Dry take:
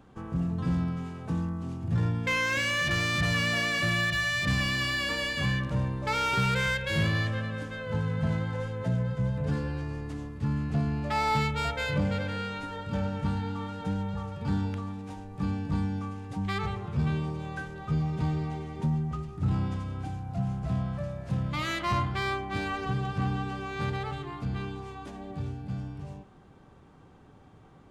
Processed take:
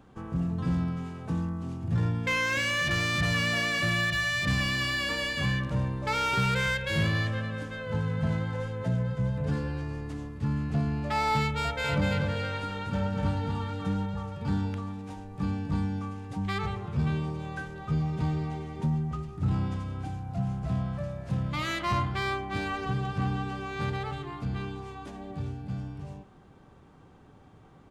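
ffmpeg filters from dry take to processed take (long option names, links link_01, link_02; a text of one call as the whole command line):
ffmpeg -i in.wav -filter_complex "[0:a]asplit=3[link_01][link_02][link_03];[link_01]afade=type=out:start_time=11.83:duration=0.02[link_04];[link_02]aecho=1:1:243:0.668,afade=type=in:start_time=11.83:duration=0.02,afade=type=out:start_time=14.05:duration=0.02[link_05];[link_03]afade=type=in:start_time=14.05:duration=0.02[link_06];[link_04][link_05][link_06]amix=inputs=3:normalize=0" out.wav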